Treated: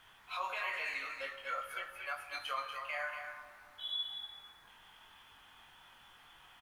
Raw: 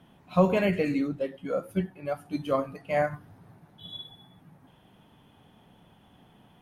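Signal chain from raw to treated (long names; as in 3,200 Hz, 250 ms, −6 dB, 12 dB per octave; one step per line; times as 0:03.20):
high-pass filter 1,200 Hz 24 dB per octave
spectral tilt −2.5 dB per octave
in parallel at −2 dB: downward compressor, threshold −47 dBFS, peak gain reduction 14.5 dB
on the sum: brickwall limiter −32.5 dBFS, peak gain reduction 10 dB
background noise pink −75 dBFS
double-tracking delay 22 ms −5 dB
single-tap delay 239 ms −7 dB
convolution reverb RT60 2.2 s, pre-delay 29 ms, DRR 10 dB
level +2.5 dB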